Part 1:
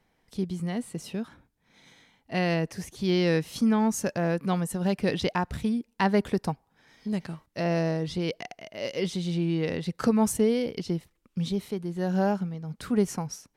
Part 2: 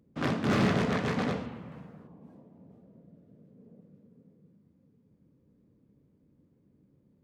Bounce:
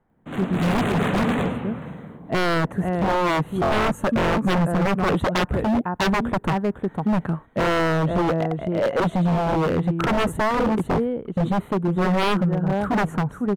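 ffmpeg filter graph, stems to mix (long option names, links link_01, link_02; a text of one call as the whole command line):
ffmpeg -i stem1.wav -i stem2.wav -filter_complex "[0:a]firequalizer=gain_entry='entry(1400,0);entry(2300,-15);entry(7400,-19)':delay=0.05:min_phase=1,volume=1.5dB,asplit=2[link_01][link_02];[link_02]volume=-9.5dB[link_03];[1:a]asoftclip=type=hard:threshold=-31dB,adelay=100,volume=-1dB[link_04];[link_03]aecho=0:1:504:1[link_05];[link_01][link_04][link_05]amix=inputs=3:normalize=0,dynaudnorm=framelen=220:gausssize=5:maxgain=12.5dB,asuperstop=centerf=5100:order=4:qfactor=1.4,aeval=exprs='0.178*(abs(mod(val(0)/0.178+3,4)-2)-1)':channel_layout=same" out.wav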